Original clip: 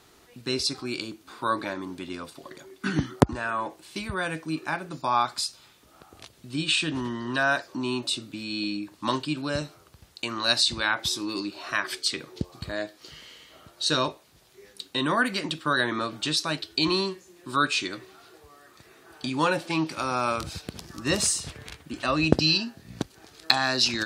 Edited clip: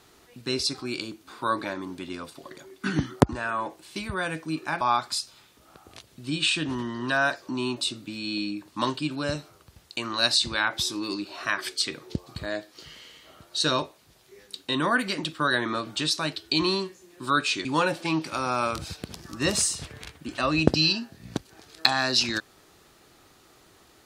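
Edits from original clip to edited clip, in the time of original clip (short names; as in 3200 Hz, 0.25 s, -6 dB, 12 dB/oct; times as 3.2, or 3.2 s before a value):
4.81–5.07 cut
17.91–19.3 cut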